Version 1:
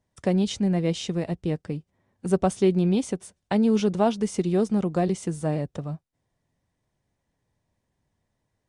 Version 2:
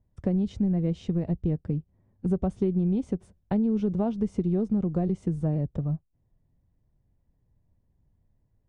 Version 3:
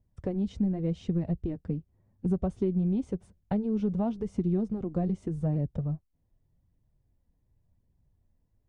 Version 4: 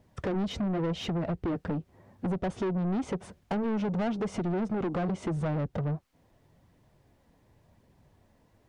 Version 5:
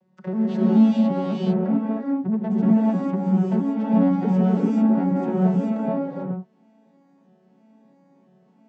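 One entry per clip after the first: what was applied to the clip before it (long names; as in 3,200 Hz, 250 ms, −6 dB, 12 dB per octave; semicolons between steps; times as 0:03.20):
spectral tilt −4.5 dB per octave; downward compressor 5 to 1, threshold −15 dBFS, peak gain reduction 8 dB; level −7 dB
flanger 0.89 Hz, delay 0.3 ms, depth 4.1 ms, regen −50%; level +1.5 dB
downward compressor 3 to 1, threshold −34 dBFS, peak gain reduction 9 dB; mid-hump overdrive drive 30 dB, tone 2,400 Hz, clips at −22 dBFS
vocoder with an arpeggio as carrier minor triad, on F#3, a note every 326 ms; reverb whose tail is shaped and stops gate 470 ms rising, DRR −6.5 dB; level +4 dB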